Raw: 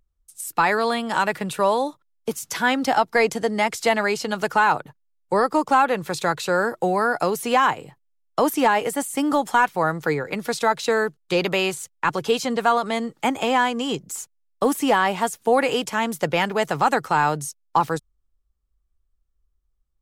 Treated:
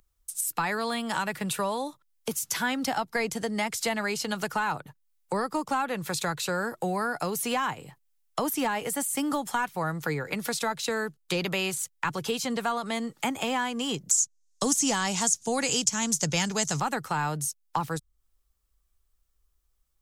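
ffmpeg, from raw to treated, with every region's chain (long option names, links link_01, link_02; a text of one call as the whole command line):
ffmpeg -i in.wav -filter_complex "[0:a]asettb=1/sr,asplit=3[link_01][link_02][link_03];[link_01]atrim=end=14.114[link_04];[link_02]atrim=start=14.11:end=16.8,asetpts=PTS-STARTPTS,afade=type=in:duration=0.004:curve=qsin,afade=type=out:start_time=2.686:duration=0.004:curve=qsin,lowpass=frequency=6500:width_type=q:width=3.6,bass=frequency=250:gain=4,treble=frequency=4000:gain=13[link_05];[link_03]atrim=start=16.796[link_06];[link_04][link_05]acrossfade=duration=0.004:curve1=hsin:curve2=qsin[link_07];[link_07][link_06]acrossfade=duration=0.004:curve1=qsin:curve2=hsin,highshelf=frequency=6100:gain=7,acrossover=split=220[link_08][link_09];[link_09]acompressor=threshold=-40dB:ratio=2.5[link_10];[link_08][link_10]amix=inputs=2:normalize=0,lowshelf=frequency=490:gain=-9.5,volume=7.5dB" out.wav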